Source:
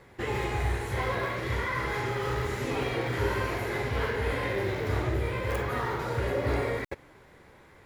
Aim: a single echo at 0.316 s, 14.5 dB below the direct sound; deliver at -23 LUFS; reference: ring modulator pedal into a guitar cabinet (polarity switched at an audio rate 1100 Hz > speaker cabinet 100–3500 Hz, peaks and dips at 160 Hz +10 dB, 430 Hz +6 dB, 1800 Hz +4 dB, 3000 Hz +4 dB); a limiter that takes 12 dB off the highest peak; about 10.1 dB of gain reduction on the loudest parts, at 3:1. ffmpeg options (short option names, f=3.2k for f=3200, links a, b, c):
-af "acompressor=threshold=-38dB:ratio=3,alimiter=level_in=13.5dB:limit=-24dB:level=0:latency=1,volume=-13.5dB,aecho=1:1:316:0.188,aeval=exprs='val(0)*sgn(sin(2*PI*1100*n/s))':c=same,highpass=100,equalizer=f=160:t=q:w=4:g=10,equalizer=f=430:t=q:w=4:g=6,equalizer=f=1.8k:t=q:w=4:g=4,equalizer=f=3k:t=q:w=4:g=4,lowpass=f=3.5k:w=0.5412,lowpass=f=3.5k:w=1.3066,volume=20.5dB"